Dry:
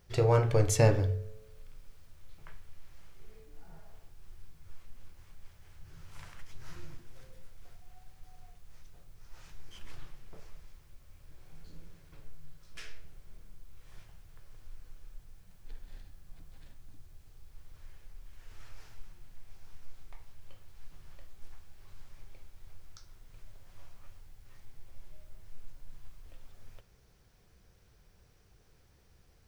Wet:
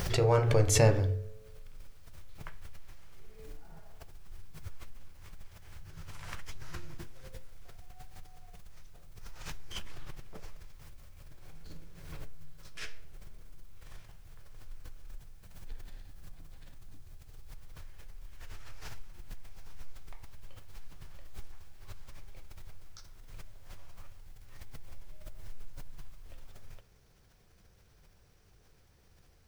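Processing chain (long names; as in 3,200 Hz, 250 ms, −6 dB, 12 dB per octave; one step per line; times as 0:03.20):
mains-hum notches 60/120/180/240/300/360/420/480 Hz
background raised ahead of every attack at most 52 dB per second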